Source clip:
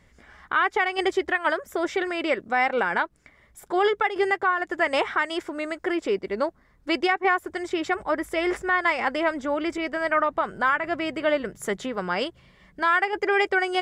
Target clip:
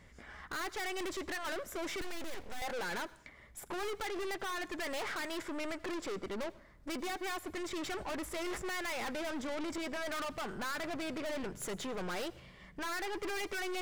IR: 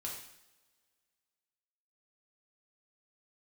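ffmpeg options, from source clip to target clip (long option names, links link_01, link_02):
-filter_complex "[0:a]aeval=exprs='(tanh(79.4*val(0)+0.4)-tanh(0.4))/79.4':channel_layout=same,asplit=2[link_01][link_02];[1:a]atrim=start_sample=2205,adelay=84[link_03];[link_02][link_03]afir=irnorm=-1:irlink=0,volume=-19dB[link_04];[link_01][link_04]amix=inputs=2:normalize=0,asettb=1/sr,asplit=3[link_05][link_06][link_07];[link_05]atrim=end=2.014[link_08];[link_06]atrim=start=2.01:end=2.62,asetpts=PTS-STARTPTS,afade=type=in:duration=0.004:curve=qsin,afade=type=out:start_time=0.606:duration=0.004:curve=qsin,aeval=exprs='abs(val(0))':channel_layout=same[link_09];[link_07]atrim=start=2.616[link_10];[link_08][link_09]acrossfade=duration=0.004:curve1=hsin:curve2=qsin[link_11];[link_11][link_10]acrossfade=duration=0.004:curve1=qsin:curve2=hsin,volume=1dB"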